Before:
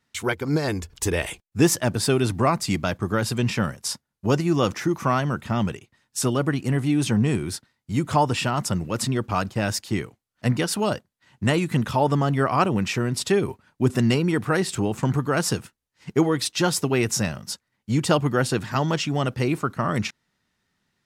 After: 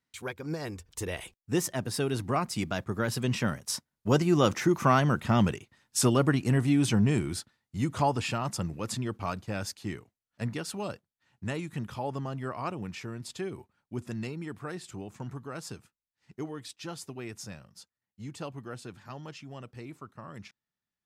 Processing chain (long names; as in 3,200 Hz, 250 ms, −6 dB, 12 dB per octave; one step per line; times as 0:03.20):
source passing by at 0:05.46, 16 m/s, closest 22 metres